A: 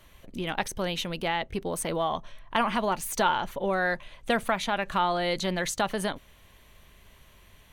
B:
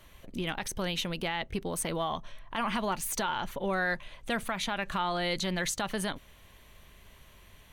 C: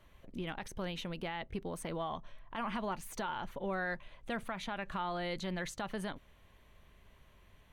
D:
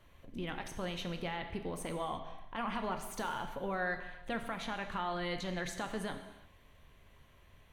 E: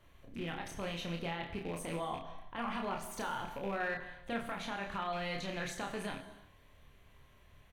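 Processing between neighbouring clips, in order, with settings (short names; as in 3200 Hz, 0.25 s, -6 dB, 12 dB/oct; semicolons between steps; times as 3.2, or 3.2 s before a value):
dynamic EQ 570 Hz, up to -5 dB, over -36 dBFS, Q 0.71; limiter -21 dBFS, peak gain reduction 8 dB
high shelf 3300 Hz -10.5 dB; gain -5.5 dB
non-linear reverb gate 0.38 s falling, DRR 5.5 dB
rattling part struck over -44 dBFS, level -37 dBFS; doubler 30 ms -4 dB; gain -2 dB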